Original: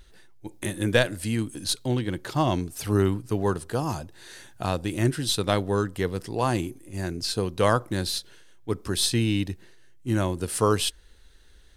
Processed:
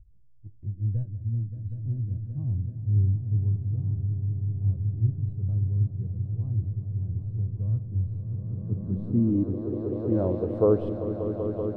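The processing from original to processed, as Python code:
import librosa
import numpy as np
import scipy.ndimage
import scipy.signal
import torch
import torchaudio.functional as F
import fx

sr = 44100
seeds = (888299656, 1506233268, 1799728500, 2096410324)

y = fx.echo_swell(x, sr, ms=192, loudest=5, wet_db=-11.5)
y = fx.filter_sweep_lowpass(y, sr, from_hz=100.0, to_hz=550.0, start_s=8.12, end_s=10.28, q=2.4)
y = y * 10.0 ** (-3.0 / 20.0)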